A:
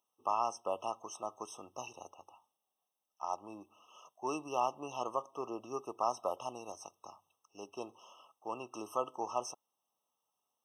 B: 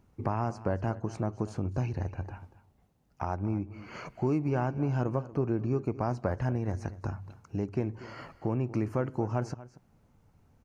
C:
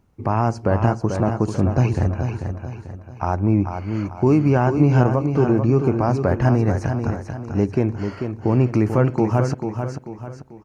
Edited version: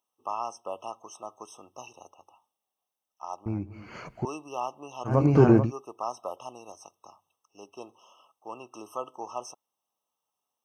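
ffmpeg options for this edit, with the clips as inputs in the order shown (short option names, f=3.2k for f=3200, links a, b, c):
-filter_complex "[0:a]asplit=3[a][b][c];[a]atrim=end=3.462[d];[1:a]atrim=start=3.458:end=4.252[e];[b]atrim=start=4.248:end=5.2[f];[2:a]atrim=start=5.04:end=5.72[g];[c]atrim=start=5.56[h];[d][e]acrossfade=d=0.004:c1=hsin:c2=hsin[i];[i][f]acrossfade=d=0.004:c1=hsin:c2=hsin[j];[j][g]acrossfade=d=0.16:c1=tri:c2=tri[k];[k][h]acrossfade=d=0.16:c1=tri:c2=tri"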